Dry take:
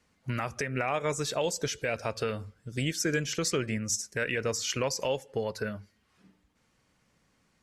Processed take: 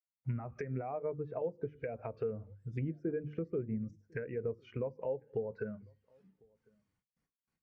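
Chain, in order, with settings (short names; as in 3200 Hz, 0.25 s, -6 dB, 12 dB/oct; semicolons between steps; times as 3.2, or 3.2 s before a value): bell 10000 Hz +6.5 dB 0.29 oct; treble ducked by the level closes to 790 Hz, closed at -27.5 dBFS; notch 570 Hz, Q 12; dynamic EQ 2300 Hz, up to +6 dB, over -60 dBFS, Q 2.4; notches 50/100/150/200/250/300/350 Hz; compressor 2:1, threshold -45 dBFS, peak gain reduction 10.5 dB; outdoor echo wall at 180 m, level -20 dB; gate with hold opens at -59 dBFS; spectral expander 1.5:1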